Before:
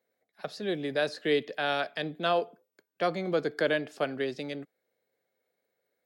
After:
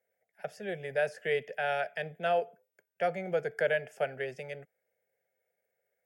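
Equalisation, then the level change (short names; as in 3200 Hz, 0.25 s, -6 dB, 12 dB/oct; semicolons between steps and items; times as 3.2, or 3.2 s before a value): fixed phaser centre 1100 Hz, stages 6; 0.0 dB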